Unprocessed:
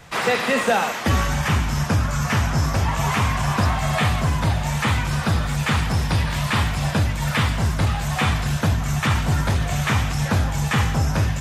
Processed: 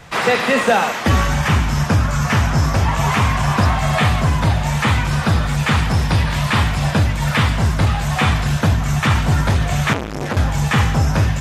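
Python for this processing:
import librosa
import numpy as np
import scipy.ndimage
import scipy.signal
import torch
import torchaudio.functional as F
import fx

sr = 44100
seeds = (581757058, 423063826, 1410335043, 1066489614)

y = fx.high_shelf(x, sr, hz=6800.0, db=-5.0)
y = fx.transformer_sat(y, sr, knee_hz=1200.0, at=(9.93, 10.37))
y = F.gain(torch.from_numpy(y), 4.5).numpy()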